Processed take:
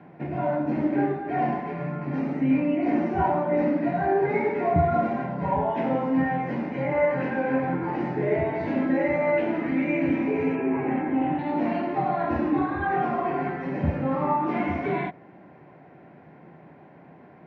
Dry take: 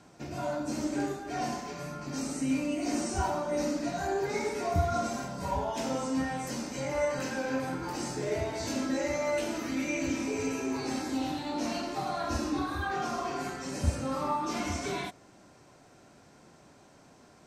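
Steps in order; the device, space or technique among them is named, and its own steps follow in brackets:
0:10.55–0:11.39: Butterworth low-pass 3,000 Hz 36 dB per octave
bass cabinet (loudspeaker in its box 88–2,200 Hz, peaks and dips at 110 Hz −5 dB, 160 Hz +8 dB, 350 Hz +3 dB, 770 Hz +3 dB, 1,300 Hz −7 dB, 2,000 Hz +4 dB)
level +6.5 dB

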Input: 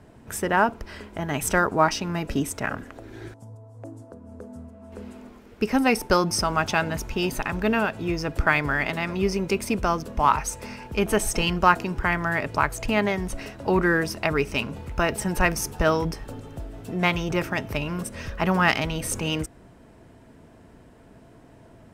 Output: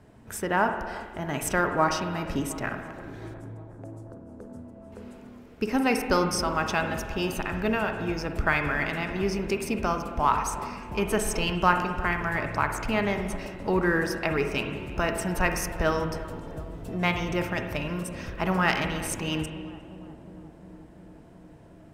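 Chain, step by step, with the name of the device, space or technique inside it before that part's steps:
dub delay into a spring reverb (feedback echo with a low-pass in the loop 357 ms, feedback 81%, low-pass 1,100 Hz, level −15 dB; spring reverb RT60 1.4 s, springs 45/54 ms, chirp 55 ms, DRR 6 dB)
level −4 dB

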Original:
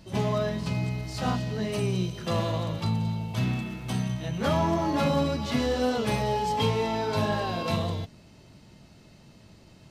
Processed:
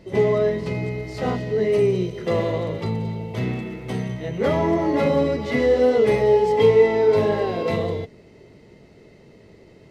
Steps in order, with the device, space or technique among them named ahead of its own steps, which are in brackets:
inside a helmet (high-shelf EQ 3,900 Hz −6.5 dB; hollow resonant body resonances 430/2,000 Hz, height 16 dB, ringing for 25 ms)

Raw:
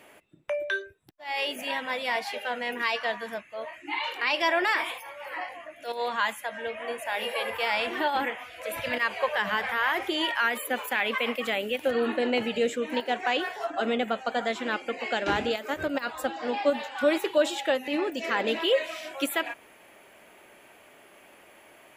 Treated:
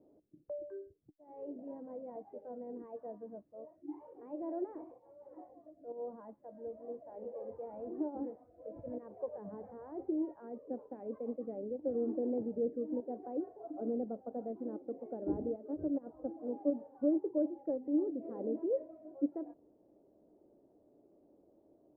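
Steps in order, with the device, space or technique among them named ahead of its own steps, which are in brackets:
under water (low-pass filter 540 Hz 24 dB per octave; parametric band 300 Hz +8.5 dB 0.26 octaves)
level −7.5 dB

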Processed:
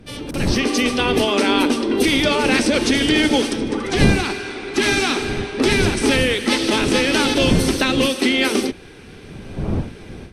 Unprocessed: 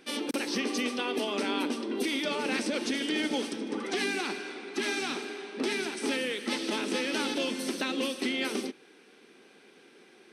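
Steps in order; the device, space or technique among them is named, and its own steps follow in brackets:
smartphone video outdoors (wind on the microphone −37 dBFS; automatic gain control gain up to 14 dB; AAC 96 kbit/s 44,100 Hz)

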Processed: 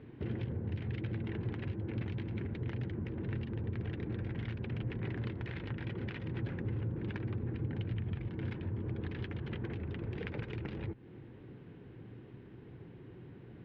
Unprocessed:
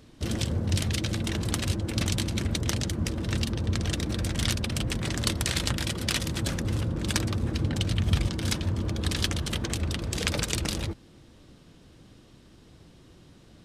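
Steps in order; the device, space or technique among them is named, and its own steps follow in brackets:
bass amplifier (downward compressor 4 to 1, threshold −38 dBFS, peak gain reduction 16.5 dB; loudspeaker in its box 62–2,300 Hz, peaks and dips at 66 Hz −7 dB, 120 Hz +7 dB, 400 Hz +7 dB, 620 Hz −7 dB, 1,200 Hz −7 dB)
level +1 dB

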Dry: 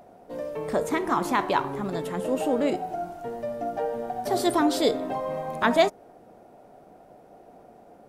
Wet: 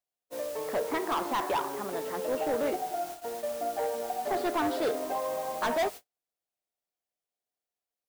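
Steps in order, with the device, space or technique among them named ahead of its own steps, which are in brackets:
aircraft radio (band-pass filter 390–2,300 Hz; hard clipping −23.5 dBFS, distortion −8 dB; white noise bed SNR 14 dB; noise gate −38 dBFS, range −48 dB)
level −1 dB

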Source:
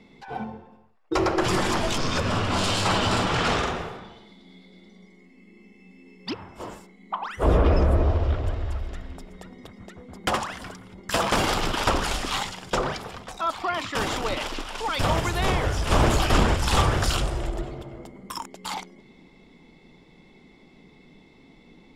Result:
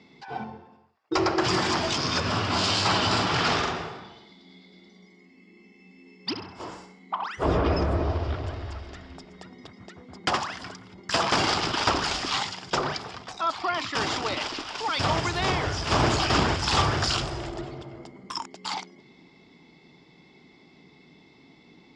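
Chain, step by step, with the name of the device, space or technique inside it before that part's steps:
0:06.29–0:07.25: flutter between parallel walls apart 11.1 metres, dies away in 0.52 s
car door speaker (loudspeaker in its box 98–7,100 Hz, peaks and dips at 210 Hz −5 dB, 520 Hz −6 dB, 4,900 Hz +7 dB)

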